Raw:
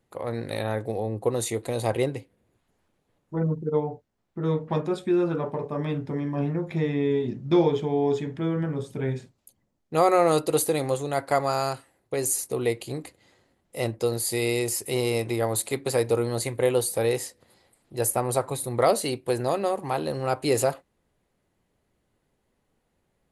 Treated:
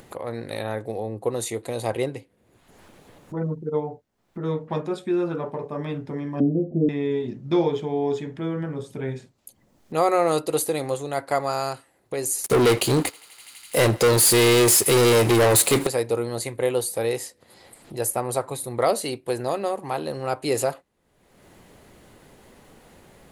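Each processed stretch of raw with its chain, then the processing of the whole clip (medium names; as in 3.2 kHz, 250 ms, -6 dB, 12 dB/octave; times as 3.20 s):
6.40–6.89 s: steep low-pass 690 Hz 72 dB/octave + peaking EQ 260 Hz +12.5 dB 0.98 oct
12.44–15.87 s: waveshaping leveller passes 5 + thinning echo 83 ms, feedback 85%, high-pass 700 Hz, level -23 dB
whole clip: bass shelf 140 Hz -5.5 dB; upward compressor, threshold -31 dBFS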